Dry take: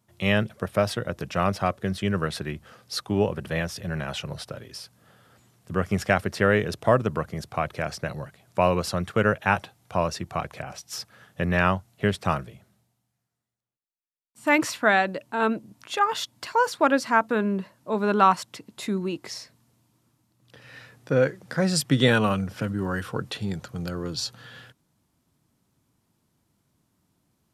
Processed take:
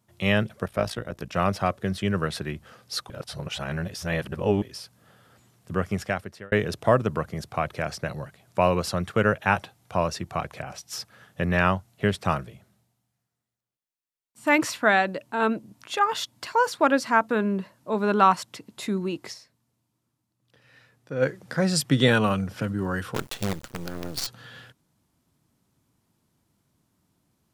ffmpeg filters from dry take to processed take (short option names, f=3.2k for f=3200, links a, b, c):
-filter_complex "[0:a]asplit=3[a][b][c];[a]afade=t=out:st=0.65:d=0.02[d];[b]tremolo=f=58:d=0.75,afade=t=in:st=0.65:d=0.02,afade=t=out:st=1.33:d=0.02[e];[c]afade=t=in:st=1.33:d=0.02[f];[d][e][f]amix=inputs=3:normalize=0,asplit=3[g][h][i];[g]afade=t=out:st=23.14:d=0.02[j];[h]acrusher=bits=5:dc=4:mix=0:aa=0.000001,afade=t=in:st=23.14:d=0.02,afade=t=out:st=24.26:d=0.02[k];[i]afade=t=in:st=24.26:d=0.02[l];[j][k][l]amix=inputs=3:normalize=0,asplit=6[m][n][o][p][q][r];[m]atrim=end=3.102[s];[n]atrim=start=3.098:end=4.622,asetpts=PTS-STARTPTS,areverse[t];[o]atrim=start=4.618:end=6.52,asetpts=PTS-STARTPTS,afade=t=out:st=1.102:d=0.8[u];[p]atrim=start=6.52:end=19.55,asetpts=PTS-STARTPTS,afade=t=in:d=0.004:c=hsin,afade=t=out:st=12.79:d=0.24:c=exp:silence=0.316228[v];[q]atrim=start=19.55:end=20.99,asetpts=PTS-STARTPTS,volume=-10dB[w];[r]atrim=start=20.99,asetpts=PTS-STARTPTS,afade=t=in:d=0.24:c=exp:silence=0.316228[x];[s][t]acrossfade=d=0.004:c1=hsin:c2=hsin[y];[u][v][w][x]concat=n=4:v=0:a=1[z];[y][z]acrossfade=d=0.004:c1=hsin:c2=hsin"